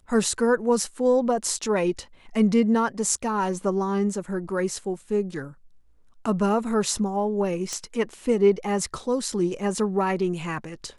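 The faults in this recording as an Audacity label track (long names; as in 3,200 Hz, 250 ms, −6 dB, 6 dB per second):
7.730000	7.730000	click −16 dBFS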